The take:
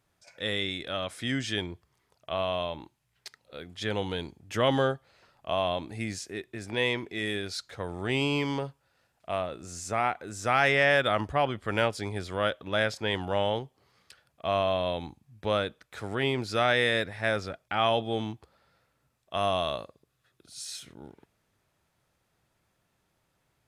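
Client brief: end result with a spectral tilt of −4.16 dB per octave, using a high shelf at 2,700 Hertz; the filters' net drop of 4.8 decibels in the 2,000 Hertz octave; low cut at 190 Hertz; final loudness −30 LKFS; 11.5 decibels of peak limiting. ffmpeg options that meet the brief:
ffmpeg -i in.wav -af "highpass=190,equalizer=frequency=2000:width_type=o:gain=-4.5,highshelf=frequency=2700:gain=-3.5,volume=6.5dB,alimiter=limit=-17.5dB:level=0:latency=1" out.wav

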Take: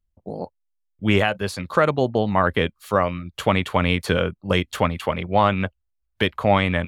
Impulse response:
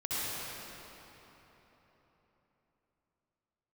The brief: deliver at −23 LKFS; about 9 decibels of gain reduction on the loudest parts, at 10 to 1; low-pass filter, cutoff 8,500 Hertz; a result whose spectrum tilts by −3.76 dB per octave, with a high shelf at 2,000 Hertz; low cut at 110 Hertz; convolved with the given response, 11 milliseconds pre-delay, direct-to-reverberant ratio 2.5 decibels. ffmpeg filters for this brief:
-filter_complex "[0:a]highpass=110,lowpass=8500,highshelf=frequency=2000:gain=4,acompressor=threshold=-21dB:ratio=10,asplit=2[link_01][link_02];[1:a]atrim=start_sample=2205,adelay=11[link_03];[link_02][link_03]afir=irnorm=-1:irlink=0,volume=-10dB[link_04];[link_01][link_04]amix=inputs=2:normalize=0,volume=3.5dB"

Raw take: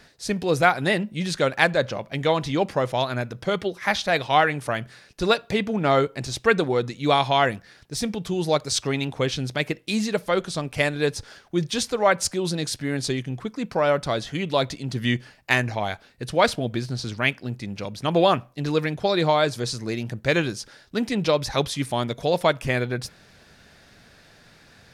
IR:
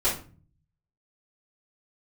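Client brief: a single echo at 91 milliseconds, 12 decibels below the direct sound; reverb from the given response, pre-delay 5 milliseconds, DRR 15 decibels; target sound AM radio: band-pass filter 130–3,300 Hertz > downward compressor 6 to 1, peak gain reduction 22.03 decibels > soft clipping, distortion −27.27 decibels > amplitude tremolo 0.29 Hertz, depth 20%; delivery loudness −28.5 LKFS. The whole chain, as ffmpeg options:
-filter_complex "[0:a]aecho=1:1:91:0.251,asplit=2[link_01][link_02];[1:a]atrim=start_sample=2205,adelay=5[link_03];[link_02][link_03]afir=irnorm=-1:irlink=0,volume=-26.5dB[link_04];[link_01][link_04]amix=inputs=2:normalize=0,highpass=130,lowpass=3300,acompressor=threshold=-36dB:ratio=6,asoftclip=threshold=-22.5dB,tremolo=f=0.29:d=0.2,volume=12.5dB"

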